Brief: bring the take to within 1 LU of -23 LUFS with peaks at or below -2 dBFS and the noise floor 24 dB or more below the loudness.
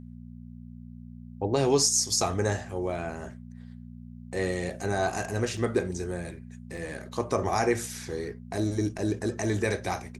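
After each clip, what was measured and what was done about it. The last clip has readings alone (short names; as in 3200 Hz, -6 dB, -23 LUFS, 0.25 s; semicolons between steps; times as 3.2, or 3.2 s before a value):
dropouts 4; longest dropout 4.6 ms; hum 60 Hz; harmonics up to 240 Hz; hum level -41 dBFS; loudness -28.5 LUFS; peak -10.5 dBFS; loudness target -23.0 LUFS
-> interpolate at 2.9/5.57/6.77/8.98, 4.6 ms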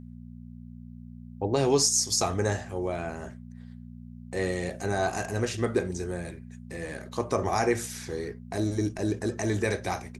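dropouts 0; hum 60 Hz; harmonics up to 240 Hz; hum level -41 dBFS
-> de-hum 60 Hz, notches 4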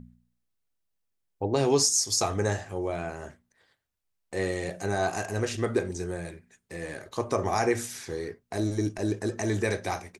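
hum none; loudness -28.5 LUFS; peak -10.5 dBFS; loudness target -23.0 LUFS
-> gain +5.5 dB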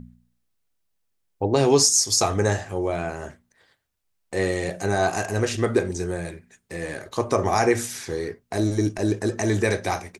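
loudness -23.0 LUFS; peak -5.0 dBFS; noise floor -73 dBFS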